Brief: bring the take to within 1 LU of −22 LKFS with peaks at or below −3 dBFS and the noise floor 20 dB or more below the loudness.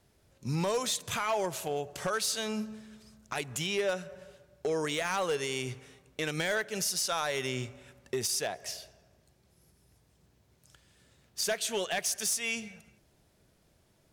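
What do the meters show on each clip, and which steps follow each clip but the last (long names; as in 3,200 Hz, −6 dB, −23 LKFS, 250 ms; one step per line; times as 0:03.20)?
share of clipped samples 0.4%; peaks flattened at −24.0 dBFS; integrated loudness −32.0 LKFS; sample peak −24.0 dBFS; target loudness −22.0 LKFS
→ clipped peaks rebuilt −24 dBFS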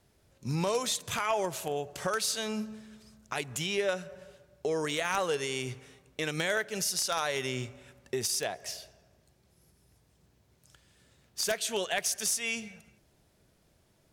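share of clipped samples 0.0%; integrated loudness −31.5 LKFS; sample peak −15.0 dBFS; target loudness −22.0 LKFS
→ level +9.5 dB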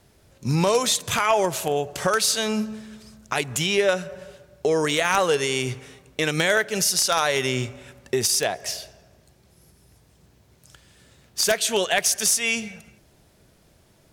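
integrated loudness −22.0 LKFS; sample peak −5.5 dBFS; background noise floor −58 dBFS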